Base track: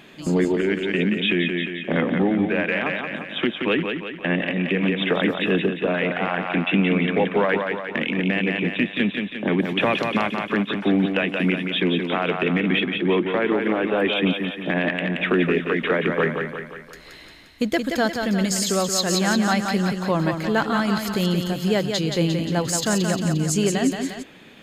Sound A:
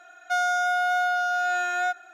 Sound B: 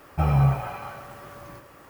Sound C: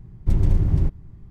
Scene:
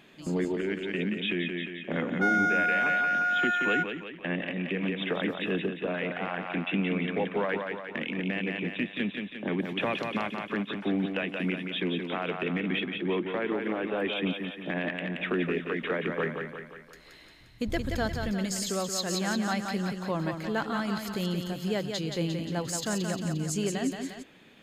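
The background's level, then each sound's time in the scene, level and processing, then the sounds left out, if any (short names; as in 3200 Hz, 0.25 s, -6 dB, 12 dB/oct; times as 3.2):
base track -9 dB
1.91 add A -12.5 dB + band shelf 1800 Hz +13.5 dB 1.1 oct
17.4 add C -13.5 dB + chorus 1.7 Hz
not used: B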